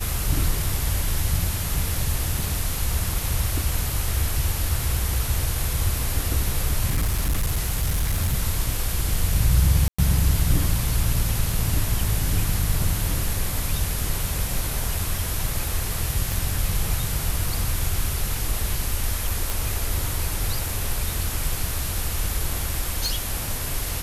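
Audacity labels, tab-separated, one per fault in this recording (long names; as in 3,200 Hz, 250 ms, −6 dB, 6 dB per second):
6.880000	8.350000	clipping −18 dBFS
9.880000	9.980000	drop-out 105 ms
16.320000	16.320000	click
19.500000	19.500000	click
23.060000	23.060000	click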